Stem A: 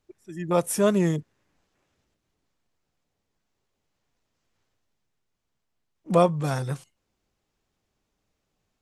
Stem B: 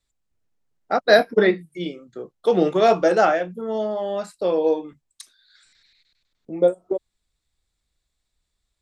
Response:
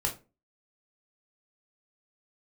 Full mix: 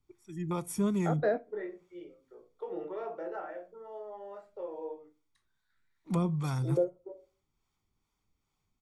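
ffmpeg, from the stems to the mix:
-filter_complex "[0:a]aecho=1:1:0.9:0.59,acrossover=split=460[s0][s1];[s0]aeval=exprs='val(0)*(1-0.5/2+0.5/2*cos(2*PI*2.4*n/s))':c=same[s2];[s1]aeval=exprs='val(0)*(1-0.5/2-0.5/2*cos(2*PI*2.4*n/s))':c=same[s3];[s2][s3]amix=inputs=2:normalize=0,volume=0.596,asplit=3[s4][s5][s6];[s5]volume=0.0841[s7];[1:a]acrossover=split=310 2200:gain=0.141 1 0.0794[s8][s9][s10];[s8][s9][s10]amix=inputs=3:normalize=0,adelay=150,volume=0.841,asplit=2[s11][s12];[s12]volume=0.075[s13];[s6]apad=whole_len=395399[s14];[s11][s14]sidechaingate=range=0.0708:threshold=0.001:ratio=16:detection=peak[s15];[2:a]atrim=start_sample=2205[s16];[s7][s13]amix=inputs=2:normalize=0[s17];[s17][s16]afir=irnorm=-1:irlink=0[s18];[s4][s15][s18]amix=inputs=3:normalize=0,acrossover=split=360[s19][s20];[s20]acompressor=threshold=0.0112:ratio=3[s21];[s19][s21]amix=inputs=2:normalize=0"

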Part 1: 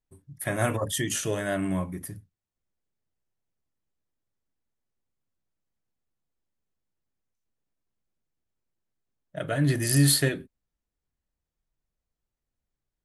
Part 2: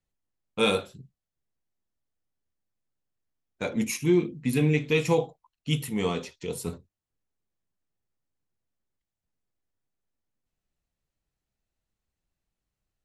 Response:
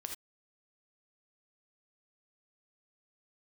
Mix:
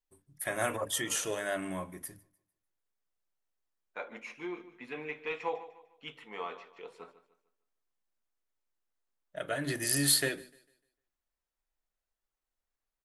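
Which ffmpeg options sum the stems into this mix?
-filter_complex "[0:a]equalizer=f=110:w=0.51:g=-13.5,bandreject=f=50:t=h:w=6,bandreject=f=100:t=h:w=6,bandreject=f=150:t=h:w=6,bandreject=f=200:t=h:w=6,bandreject=f=250:t=h:w=6,bandreject=f=300:t=h:w=6,volume=0.75,asplit=3[s0][s1][s2];[s1]volume=0.0631[s3];[1:a]highpass=970,asoftclip=type=hard:threshold=0.0891,lowpass=1500,adelay=350,volume=1,asplit=2[s4][s5];[s5]volume=0.178[s6];[s2]apad=whole_len=590671[s7];[s4][s7]sidechaincompress=threshold=0.00316:ratio=8:attack=16:release=288[s8];[s3][s6]amix=inputs=2:normalize=0,aecho=0:1:150|300|450|600|750:1|0.34|0.116|0.0393|0.0134[s9];[s0][s8][s9]amix=inputs=3:normalize=0"

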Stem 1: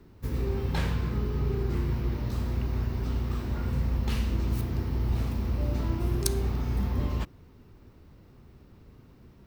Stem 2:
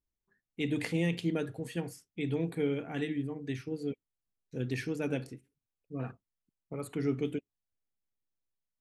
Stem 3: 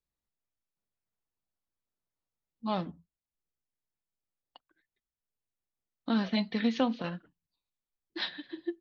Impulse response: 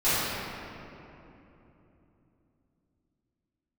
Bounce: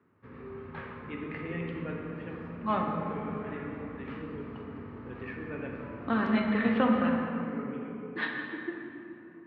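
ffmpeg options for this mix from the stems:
-filter_complex "[0:a]volume=0.316,asplit=2[s0][s1];[s1]volume=0.1[s2];[1:a]adelay=500,volume=0.447,asplit=2[s3][s4];[s4]volume=0.178[s5];[2:a]volume=1.12,asplit=3[s6][s7][s8];[s7]volume=0.168[s9];[s8]apad=whole_len=410329[s10];[s3][s10]sidechaincompress=threshold=0.0158:ratio=8:attack=16:release=1280[s11];[3:a]atrim=start_sample=2205[s12];[s2][s5][s9]amix=inputs=3:normalize=0[s13];[s13][s12]afir=irnorm=-1:irlink=0[s14];[s0][s11][s6][s14]amix=inputs=4:normalize=0,highpass=f=120:w=0.5412,highpass=f=120:w=1.3066,equalizer=f=130:t=q:w=4:g=-8,equalizer=f=190:t=q:w=4:g=-4,equalizer=f=340:t=q:w=4:g=-6,equalizer=f=760:t=q:w=4:g=-4,equalizer=f=1200:t=q:w=4:g=7,equalizer=f=1700:t=q:w=4:g=4,lowpass=f=2500:w=0.5412,lowpass=f=2500:w=1.3066"

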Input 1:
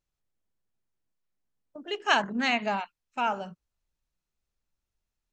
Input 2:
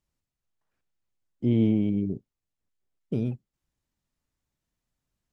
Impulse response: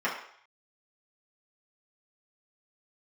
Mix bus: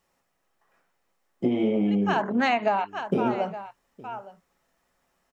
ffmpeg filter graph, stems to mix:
-filter_complex "[0:a]volume=1.06,asplit=2[s0][s1];[s1]volume=0.0841[s2];[1:a]acompressor=threshold=0.0501:ratio=2.5,highshelf=f=2500:g=10,volume=0.75,asplit=4[s3][s4][s5][s6];[s4]volume=0.596[s7];[s5]volume=0.075[s8];[s6]apad=whole_len=234721[s9];[s0][s9]sidechaincompress=threshold=0.01:ratio=8:attack=16:release=161[s10];[2:a]atrim=start_sample=2205[s11];[s7][s11]afir=irnorm=-1:irlink=0[s12];[s2][s8]amix=inputs=2:normalize=0,aecho=0:1:864:1[s13];[s10][s3][s12][s13]amix=inputs=4:normalize=0,equalizer=f=670:w=0.4:g=14,acompressor=threshold=0.1:ratio=6"

